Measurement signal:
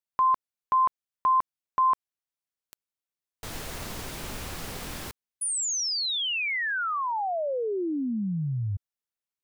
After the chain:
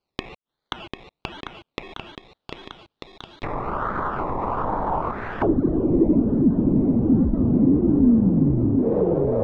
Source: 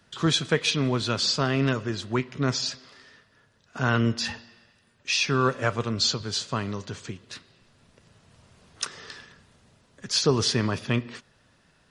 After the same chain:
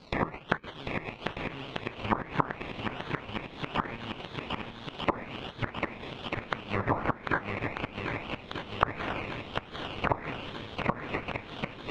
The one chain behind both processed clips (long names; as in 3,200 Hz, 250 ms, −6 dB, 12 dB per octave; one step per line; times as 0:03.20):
samples in bit-reversed order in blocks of 64 samples
parametric band 93 Hz −5.5 dB 1.8 octaves
in parallel at −2.5 dB: downward compressor 5 to 1, threshold −36 dBFS
on the sum: sample-and-hold swept by an LFO 23×, swing 60% 1.2 Hz
gate with flip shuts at −20 dBFS, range −25 dB
on a send: feedback echo with a long and a short gap by turns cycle 1,242 ms, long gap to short 1.5 to 1, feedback 58%, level −5 dB
on the sum: envelope-controlled low-pass 260–4,500 Hz down, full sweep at −22.5 dBFS
level +4 dB